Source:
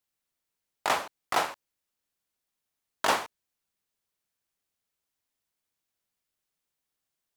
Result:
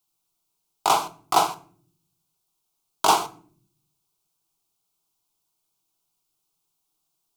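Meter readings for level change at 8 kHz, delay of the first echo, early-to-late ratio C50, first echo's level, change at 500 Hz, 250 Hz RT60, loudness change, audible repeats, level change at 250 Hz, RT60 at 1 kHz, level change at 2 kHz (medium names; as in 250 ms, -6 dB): +9.0 dB, no echo, 18.0 dB, no echo, +4.5 dB, 1.0 s, +7.0 dB, no echo, +6.5 dB, 0.45 s, -2.0 dB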